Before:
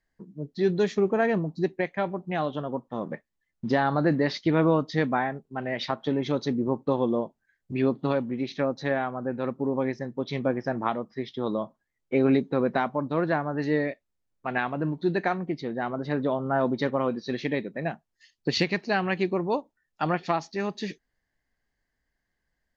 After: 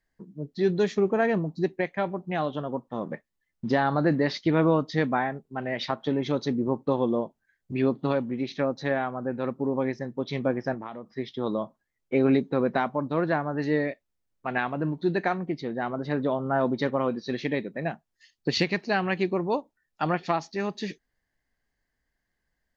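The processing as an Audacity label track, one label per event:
10.740000	11.150000	compressor 4:1, threshold -34 dBFS

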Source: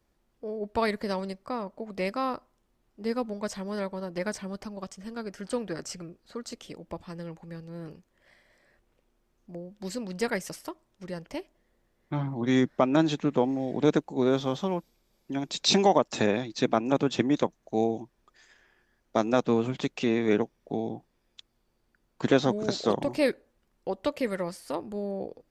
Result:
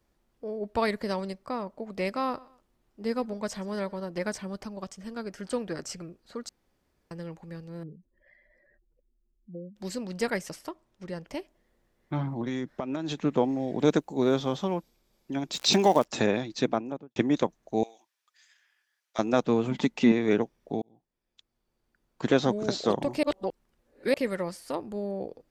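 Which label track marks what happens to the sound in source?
2.020000	3.990000	feedback echo 0.122 s, feedback 37%, level -23 dB
6.490000	7.110000	room tone
7.830000	9.760000	spectral contrast raised exponent 2.4
10.410000	11.260000	high shelf 7300 Hz -6 dB
12.410000	13.190000	compressor 12:1, threshold -27 dBFS
13.780000	14.340000	high shelf 9500 Hz +11.5 dB
15.520000	16.030000	crackle 250/s -30 dBFS
16.540000	17.160000	studio fade out
17.830000	19.190000	Bessel high-pass 2300 Hz
19.710000	20.120000	small resonant body resonances 230/890/2000 Hz, height 10 dB
20.820000	22.490000	fade in
23.230000	24.140000	reverse

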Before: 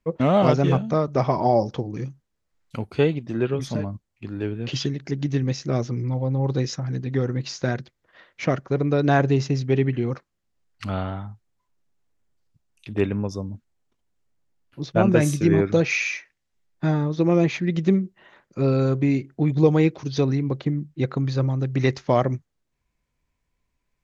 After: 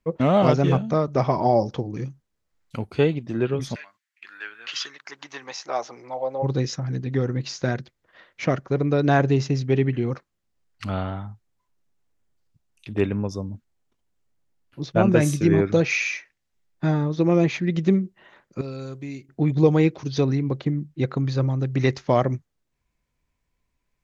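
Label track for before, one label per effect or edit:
3.740000	6.420000	resonant high-pass 2100 Hz -> 590 Hz, resonance Q 3.2
18.610000	19.290000	pre-emphasis coefficient 0.8

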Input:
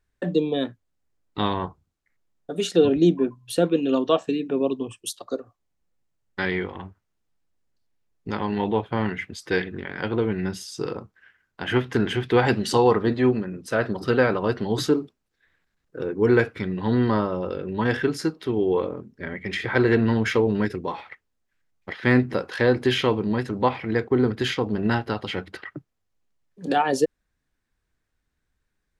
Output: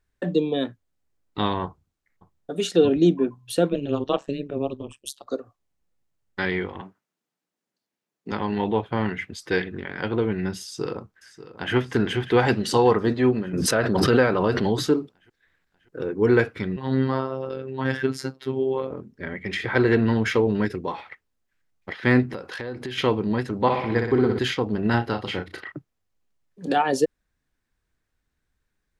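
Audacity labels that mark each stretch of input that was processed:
1.650000	2.560000	echo throw 0.56 s, feedback 55%, level -16.5 dB
3.720000	5.270000	AM modulator 140 Hz, depth 100%
6.810000	8.320000	HPF 170 Hz 24 dB/oct
10.620000	11.750000	echo throw 0.59 s, feedback 65%, level -14.5 dB
13.530000	14.760000	backwards sustainer at most 23 dB/s
16.760000	18.910000	robotiser 132 Hz
22.330000	22.980000	compressor 5:1, threshold -30 dBFS
23.610000	24.390000	flutter echo walls apart 10.5 m, dies away in 0.76 s
24.900000	25.720000	doubler 34 ms -7.5 dB

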